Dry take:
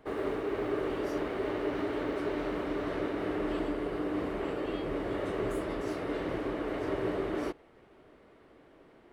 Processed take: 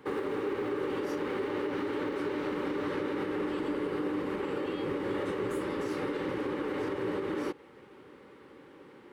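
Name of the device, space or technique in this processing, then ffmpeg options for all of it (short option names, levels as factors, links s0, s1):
PA system with an anti-feedback notch: -af "highpass=110,asuperstop=centerf=670:order=8:qfactor=4.2,alimiter=level_in=2.11:limit=0.0631:level=0:latency=1:release=151,volume=0.473,volume=2"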